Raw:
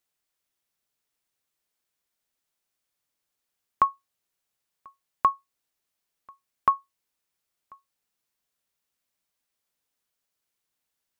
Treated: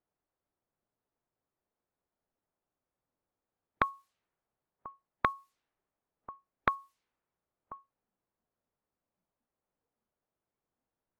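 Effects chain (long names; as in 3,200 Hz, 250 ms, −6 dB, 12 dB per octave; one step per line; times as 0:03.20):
noise reduction from a noise print of the clip's start 9 dB
low-pass that shuts in the quiet parts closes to 880 Hz, open at −28.5 dBFS
every bin compressed towards the loudest bin 2 to 1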